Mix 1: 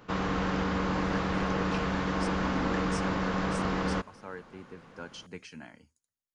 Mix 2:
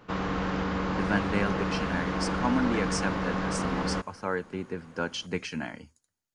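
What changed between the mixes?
speech +12.0 dB; master: add treble shelf 6.7 kHz -5.5 dB

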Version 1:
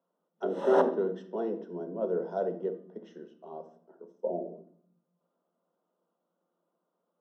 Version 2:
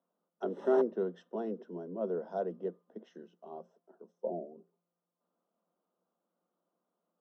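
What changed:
background -9.5 dB; reverb: off

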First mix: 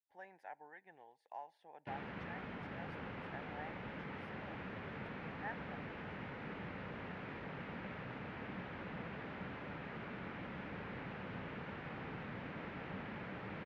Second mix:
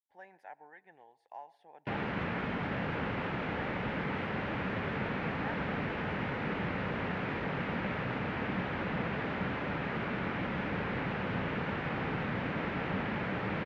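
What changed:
background +9.0 dB; reverb: on, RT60 0.35 s

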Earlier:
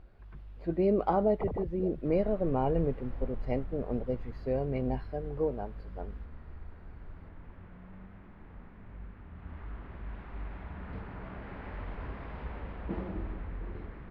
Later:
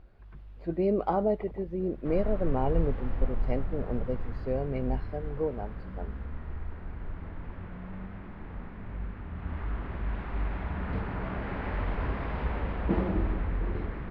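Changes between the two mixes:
first sound -11.5 dB; second sound +9.0 dB

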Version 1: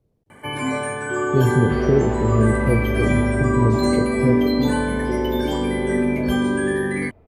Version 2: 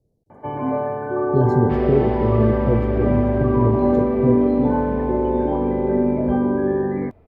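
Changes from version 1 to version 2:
speech: add Chebyshev band-stop 690–4800 Hz, order 2; first sound: add resonant low-pass 770 Hz, resonance Q 1.9

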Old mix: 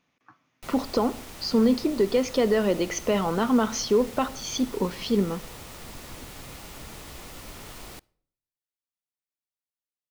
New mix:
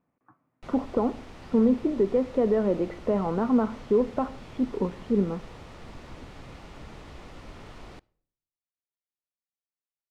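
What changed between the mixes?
speech: add low-pass 1.2 kHz 12 dB/octave; master: add tape spacing loss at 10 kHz 22 dB

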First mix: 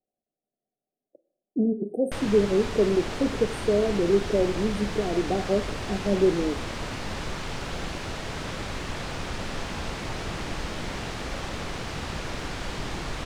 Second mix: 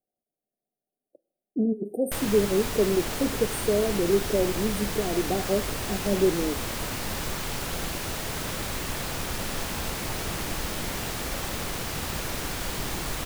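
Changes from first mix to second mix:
speech: send -7.5 dB; master: remove distance through air 94 m

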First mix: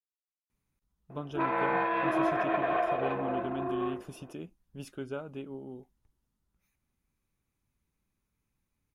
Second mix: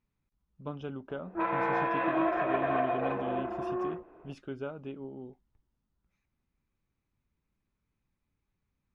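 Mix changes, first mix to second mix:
speech: entry -0.50 s; master: add distance through air 130 m

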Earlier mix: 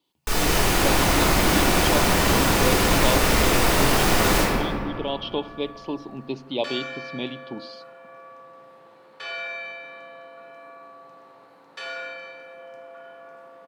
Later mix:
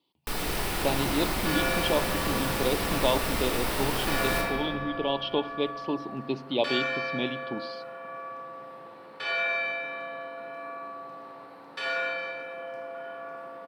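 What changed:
first sound: send -11.5 dB; second sound: send +6.5 dB; master: add peaking EQ 6.7 kHz -8 dB 0.36 oct

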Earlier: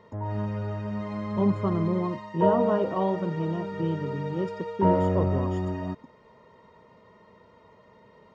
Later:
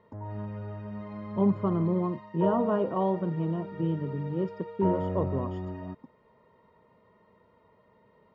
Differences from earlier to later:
background -6.5 dB; master: add distance through air 200 m

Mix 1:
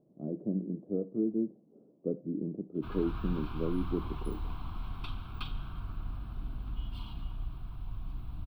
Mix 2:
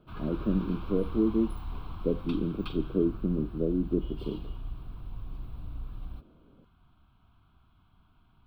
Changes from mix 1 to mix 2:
speech +5.0 dB; background: entry -2.75 s

